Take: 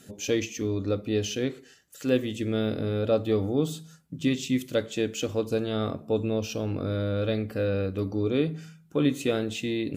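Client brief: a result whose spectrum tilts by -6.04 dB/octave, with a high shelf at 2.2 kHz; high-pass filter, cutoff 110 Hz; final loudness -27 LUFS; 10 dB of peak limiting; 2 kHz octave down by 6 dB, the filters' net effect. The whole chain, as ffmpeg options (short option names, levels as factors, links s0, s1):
-af "highpass=110,equalizer=f=2000:t=o:g=-6,highshelf=f=2200:g=-3.5,volume=1.88,alimiter=limit=0.158:level=0:latency=1"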